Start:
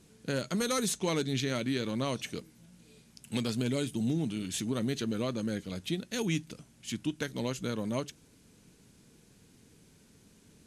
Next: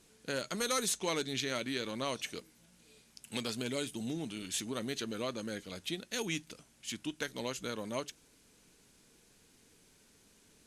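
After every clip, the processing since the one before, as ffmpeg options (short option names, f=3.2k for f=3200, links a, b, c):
-af "equalizer=f=130:t=o:w=2.6:g=-11.5"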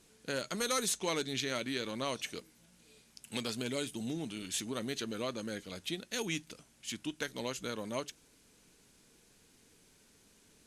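-af anull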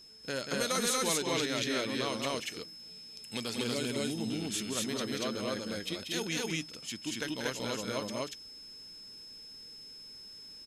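-af "aeval=exprs='val(0)+0.00251*sin(2*PI*5200*n/s)':c=same,aecho=1:1:186.6|236.2:0.501|1"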